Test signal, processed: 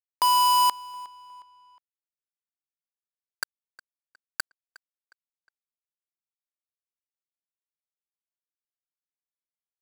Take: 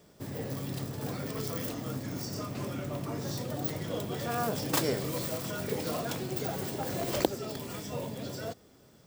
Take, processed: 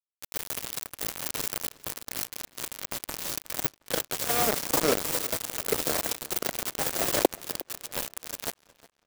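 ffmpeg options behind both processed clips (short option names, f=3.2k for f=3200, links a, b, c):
-filter_complex "[0:a]bass=f=250:g=-12,treble=f=4k:g=12,acrossover=split=330|1000[a][b][c];[c]acompressor=threshold=-36dB:ratio=6[d];[a][b][d]amix=inputs=3:normalize=0,acrusher=bits=4:mix=0:aa=0.000001,asplit=2[e][f];[f]adelay=361,lowpass=f=5k:p=1,volume=-20dB,asplit=2[g][h];[h]adelay=361,lowpass=f=5k:p=1,volume=0.42,asplit=2[i][j];[j]adelay=361,lowpass=f=5k:p=1,volume=0.42[k];[e][g][i][k]amix=inputs=4:normalize=0,volume=7dB"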